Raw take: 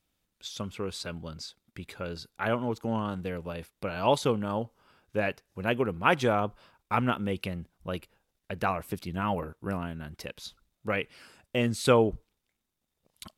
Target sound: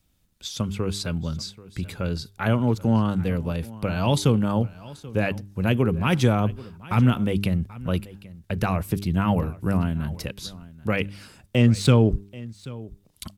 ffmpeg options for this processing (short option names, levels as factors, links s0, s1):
-filter_complex "[0:a]bass=f=250:g=11,treble=f=4000:g=4,bandreject=f=99.88:t=h:w=4,bandreject=f=199.76:t=h:w=4,bandreject=f=299.64:t=h:w=4,bandreject=f=399.52:t=h:w=4,acrossover=split=280|2500[s0][s1][s2];[s1]alimiter=limit=0.0944:level=0:latency=1[s3];[s0][s3][s2]amix=inputs=3:normalize=0,asettb=1/sr,asplit=3[s4][s5][s6];[s4]atrim=end=11.564[s7];[s5]atrim=start=11.56:end=12.11,asetpts=PTS-STARTPTS,afade=t=in:d=0.004:c=qsin,afade=t=out:st=0.546:d=0.004:c=qsin,adynamicsmooth=sensitivity=5:basefreq=5400[s8];[s6]atrim=start=12.106[s9];[s7][s8]acrossfade=d=0.004:c1=hsin:c2=qsin[s10];[s10][s9]acrossfade=d=0.004:c1=qsin:c2=hsin,aecho=1:1:784:0.106,volume=1.58"